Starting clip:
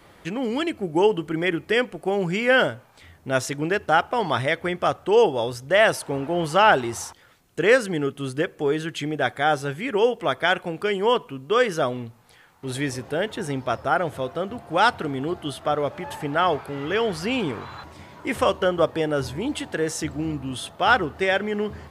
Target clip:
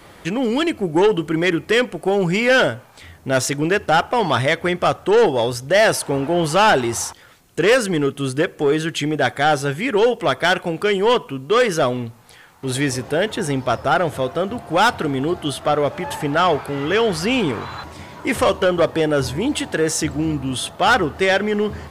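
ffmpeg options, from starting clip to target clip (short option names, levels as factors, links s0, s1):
-af "equalizer=f=8300:t=o:w=1.8:g=2.5,asoftclip=type=tanh:threshold=0.158,volume=2.24"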